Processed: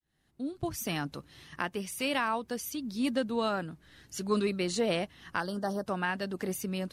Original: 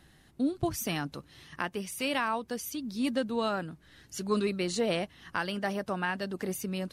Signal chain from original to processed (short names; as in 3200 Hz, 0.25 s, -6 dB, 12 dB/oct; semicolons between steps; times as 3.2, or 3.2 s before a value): opening faded in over 1.02 s; 5.4–5.86 Butterworth band-stop 2400 Hz, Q 0.98